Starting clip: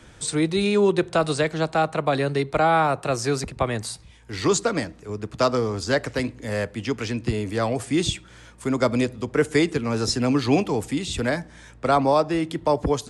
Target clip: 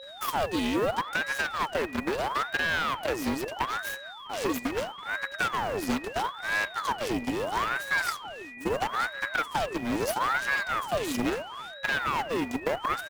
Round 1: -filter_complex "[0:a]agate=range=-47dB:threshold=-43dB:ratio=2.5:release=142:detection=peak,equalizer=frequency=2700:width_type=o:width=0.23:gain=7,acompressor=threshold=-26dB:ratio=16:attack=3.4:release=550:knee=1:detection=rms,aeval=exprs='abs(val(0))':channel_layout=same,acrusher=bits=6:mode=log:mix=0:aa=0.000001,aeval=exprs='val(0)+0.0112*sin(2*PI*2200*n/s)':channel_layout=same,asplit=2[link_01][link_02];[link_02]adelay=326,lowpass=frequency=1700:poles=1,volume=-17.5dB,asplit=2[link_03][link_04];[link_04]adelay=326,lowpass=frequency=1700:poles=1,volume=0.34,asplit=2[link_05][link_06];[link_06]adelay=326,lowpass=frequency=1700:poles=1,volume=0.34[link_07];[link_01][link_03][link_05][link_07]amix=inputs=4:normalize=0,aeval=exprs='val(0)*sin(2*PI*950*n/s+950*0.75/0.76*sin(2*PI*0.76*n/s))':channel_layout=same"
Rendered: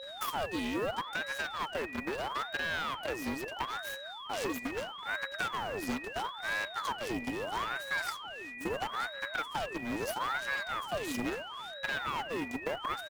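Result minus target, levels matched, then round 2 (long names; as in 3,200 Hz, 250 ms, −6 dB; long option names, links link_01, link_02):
downward compressor: peak gain reduction +7 dB
-filter_complex "[0:a]agate=range=-47dB:threshold=-43dB:ratio=2.5:release=142:detection=peak,equalizer=frequency=2700:width_type=o:width=0.23:gain=7,acompressor=threshold=-18.5dB:ratio=16:attack=3.4:release=550:knee=1:detection=rms,aeval=exprs='abs(val(0))':channel_layout=same,acrusher=bits=6:mode=log:mix=0:aa=0.000001,aeval=exprs='val(0)+0.0112*sin(2*PI*2200*n/s)':channel_layout=same,asplit=2[link_01][link_02];[link_02]adelay=326,lowpass=frequency=1700:poles=1,volume=-17.5dB,asplit=2[link_03][link_04];[link_04]adelay=326,lowpass=frequency=1700:poles=1,volume=0.34,asplit=2[link_05][link_06];[link_06]adelay=326,lowpass=frequency=1700:poles=1,volume=0.34[link_07];[link_01][link_03][link_05][link_07]amix=inputs=4:normalize=0,aeval=exprs='val(0)*sin(2*PI*950*n/s+950*0.75/0.76*sin(2*PI*0.76*n/s))':channel_layout=same"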